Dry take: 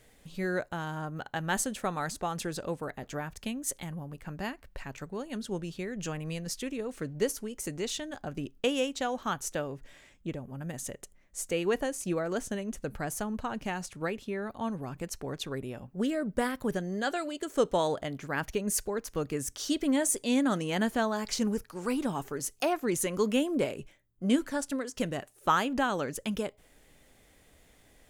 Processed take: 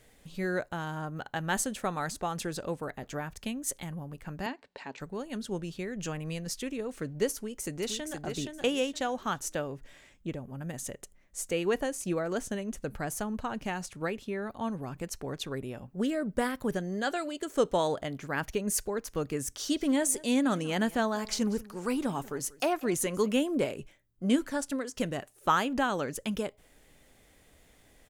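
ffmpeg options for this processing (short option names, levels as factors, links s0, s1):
-filter_complex "[0:a]asettb=1/sr,asplit=3[s0][s1][s2];[s0]atrim=end=4.464[s3];[s1]atrim=start=4.46:end=5,asetpts=PTS-STARTPTS,afade=t=in:d=0.004:c=qsin,afade=t=out:st=0.536:d=0.004:c=qsin,highpass=250,equalizer=f=260:t=q:w=4:g=4,equalizer=f=440:t=q:w=4:g=5,equalizer=f=880:t=q:w=4:g=6,equalizer=f=1300:t=q:w=4:g=-4,equalizer=f=4000:t=q:w=4:g=5,equalizer=f=6300:t=q:w=4:g=-6,lowpass=f=7300:w=0.5412,lowpass=f=7300:w=1.3066[s4];[s2]atrim=start=4.996[s5];[s3][s4]acrossfade=d=0.004:c1=hsin:c2=qsin[s6];[s6][s5]acrossfade=d=0.004:c1=qsin:c2=hsin,asplit=2[s7][s8];[s8]afade=t=in:st=7.35:d=0.01,afade=t=out:st=8.2:d=0.01,aecho=0:1:470|940|1410:0.562341|0.140585|0.0351463[s9];[s7][s9]amix=inputs=2:normalize=0,asettb=1/sr,asplit=3[s10][s11][s12];[s10]atrim=end=19.514[s13];[s11]atrim=start=19.51:end=23.36,asetpts=PTS-STARTPTS,afade=t=in:d=0.004:c=qsin,afade=t=out:st=3.846:d=0.004:c=qsin,aecho=1:1:189:0.0891,atrim=end_sample=169785[s14];[s12]atrim=start=23.356[s15];[s13][s14]acrossfade=d=0.004:c1=hsin:c2=qsin[s16];[s16][s15]acrossfade=d=0.004:c1=qsin:c2=hsin"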